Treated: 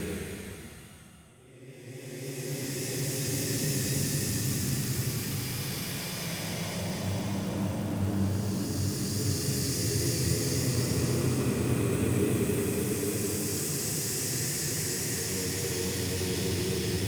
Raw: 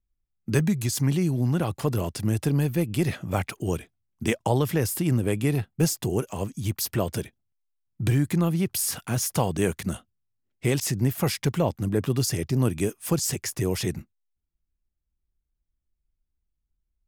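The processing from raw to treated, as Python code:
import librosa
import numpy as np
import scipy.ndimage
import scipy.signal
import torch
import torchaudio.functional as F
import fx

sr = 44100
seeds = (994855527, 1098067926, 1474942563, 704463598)

p1 = fx.auto_swell(x, sr, attack_ms=198.0)
p2 = fx.paulstretch(p1, sr, seeds[0], factor=4.3, window_s=1.0, from_s=9.95)
p3 = fx.vibrato(p2, sr, rate_hz=3.6, depth_cents=30.0)
p4 = (np.mod(10.0 ** (28.5 / 20.0) * p3 + 1.0, 2.0) - 1.0) / 10.0 ** (28.5 / 20.0)
y = p3 + F.gain(torch.from_numpy(p4), -12.0).numpy()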